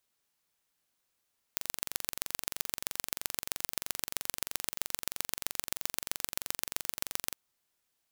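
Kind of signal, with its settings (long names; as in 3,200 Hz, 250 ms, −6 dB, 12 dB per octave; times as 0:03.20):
impulse train 23.1 per second, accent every 3, −2.5 dBFS 5.78 s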